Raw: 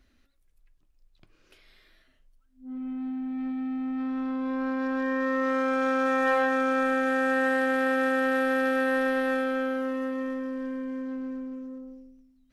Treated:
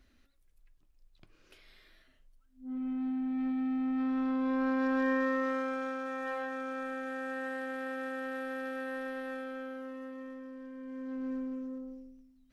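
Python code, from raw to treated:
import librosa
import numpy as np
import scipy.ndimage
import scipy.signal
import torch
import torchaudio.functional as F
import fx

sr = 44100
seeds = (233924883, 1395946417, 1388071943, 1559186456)

y = fx.gain(x, sr, db=fx.line((5.1, -1.0), (6.03, -13.0), (10.72, -13.0), (11.32, -1.0)))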